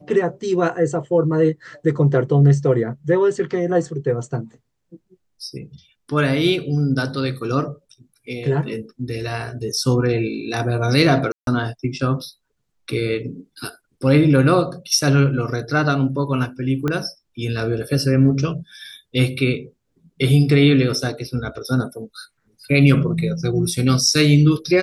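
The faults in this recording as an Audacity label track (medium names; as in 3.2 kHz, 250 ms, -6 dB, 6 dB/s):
11.320000	11.470000	dropout 152 ms
16.880000	16.880000	pop -10 dBFS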